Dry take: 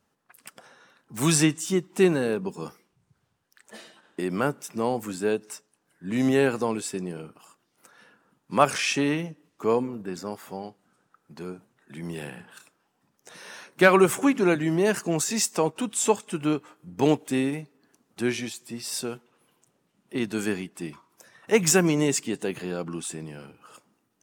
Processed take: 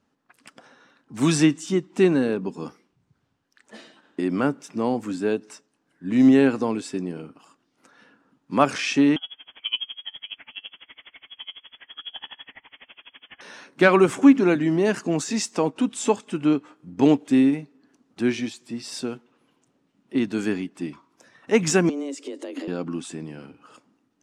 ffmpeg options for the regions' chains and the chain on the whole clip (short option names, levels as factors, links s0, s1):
-filter_complex "[0:a]asettb=1/sr,asplit=3[s0][s1][s2];[s0]atrim=end=9.164[s3];[s1]atrim=start=9.16:end=13.41,asetpts=PTS-STARTPTS,afade=t=in:d=0.004:c=qsin,afade=t=out:st=4.246:d=0.004:c=qsin,aeval=exprs='val(0)+0.5*0.0168*sgn(val(0))':c=same,lowpass=f=3000:t=q:w=0.5098,lowpass=f=3000:t=q:w=0.6013,lowpass=f=3000:t=q:w=0.9,lowpass=f=3000:t=q:w=2.563,afreqshift=-3500,aeval=exprs='val(0)*pow(10,-29*(0.5-0.5*cos(2*PI*12*n/s))/20)':c=same[s4];[s2]atrim=start=13.406[s5];[s3][s4]acrossfade=d=0.004:c1=hsin:c2=qsin[s6];[s6][s5]acrossfade=d=0.004:c1=qsin:c2=hsin,asettb=1/sr,asplit=3[s7][s8][s9];[s7]atrim=end=21.894[s10];[s8]atrim=start=21.89:end=22.68,asetpts=PTS-STARTPTS,afade=t=in:d=0.004:c=qsin,afade=t=out:st=0.786:d=0.004:c=qsin,bass=f=250:g=8,treble=f=4000:g=3,acompressor=threshold=0.0282:ratio=8:attack=3.2:release=140:knee=1:detection=peak,afreqshift=140[s11];[s9]atrim=start=22.676[s12];[s10][s11]acrossfade=d=0.004:c1=hsin:c2=qsin[s13];[s13][s12]acrossfade=d=0.004:c1=qsin:c2=hsin,lowpass=6200,equalizer=f=270:t=o:w=0.42:g=9.5"